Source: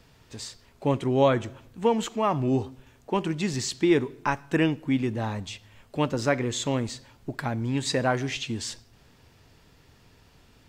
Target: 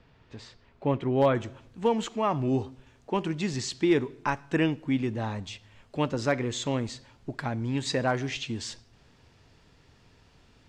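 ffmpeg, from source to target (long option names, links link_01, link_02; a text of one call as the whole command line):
ffmpeg -i in.wav -af "asetnsamples=nb_out_samples=441:pad=0,asendcmd='1.35 lowpass f 7400',lowpass=3000,asoftclip=type=hard:threshold=-12dB,volume=-2dB" out.wav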